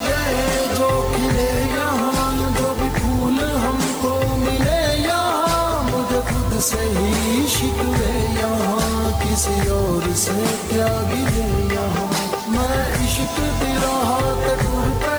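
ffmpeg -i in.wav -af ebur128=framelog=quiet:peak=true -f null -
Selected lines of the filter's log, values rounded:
Integrated loudness:
  I:         -19.4 LUFS
  Threshold: -29.3 LUFS
Loudness range:
  LRA:         1.0 LU
  Threshold: -39.4 LUFS
  LRA low:   -19.9 LUFS
  LRA high:  -18.9 LUFS
True peak:
  Peak:       -6.8 dBFS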